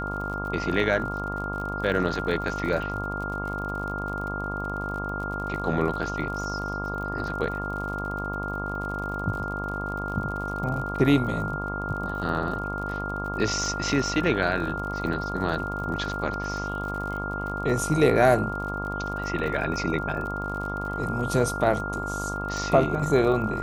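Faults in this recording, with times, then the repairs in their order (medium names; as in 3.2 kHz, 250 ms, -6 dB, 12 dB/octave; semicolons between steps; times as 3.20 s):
buzz 50 Hz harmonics 27 -33 dBFS
crackle 52 per s -34 dBFS
whine 1.4 kHz -31 dBFS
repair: de-click; de-hum 50 Hz, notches 27; band-stop 1.4 kHz, Q 30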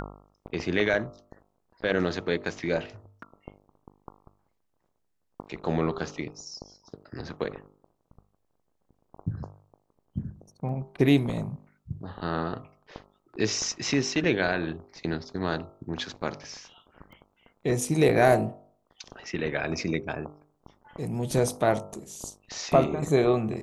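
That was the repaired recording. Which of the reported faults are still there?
nothing left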